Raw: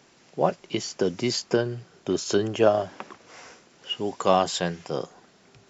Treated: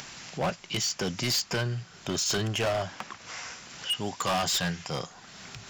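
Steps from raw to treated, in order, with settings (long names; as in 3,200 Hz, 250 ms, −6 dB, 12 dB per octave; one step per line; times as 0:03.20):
parametric band 390 Hz −14.5 dB 1.9 octaves
upward compression, threshold −41 dBFS
gain into a clipping stage and back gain 31 dB
level +7 dB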